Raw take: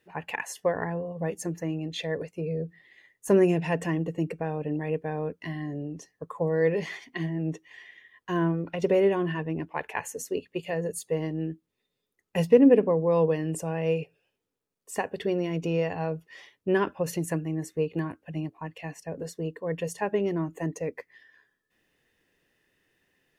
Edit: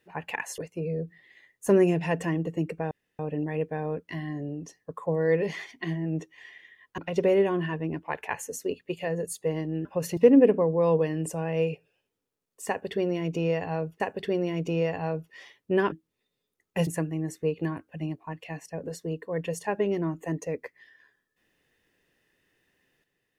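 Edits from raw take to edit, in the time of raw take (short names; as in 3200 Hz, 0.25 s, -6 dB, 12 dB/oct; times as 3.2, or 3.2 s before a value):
0.58–2.19 cut
4.52 insert room tone 0.28 s
8.31–8.64 cut
11.51–12.46 swap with 16.89–17.21
14.97–16.29 loop, 2 plays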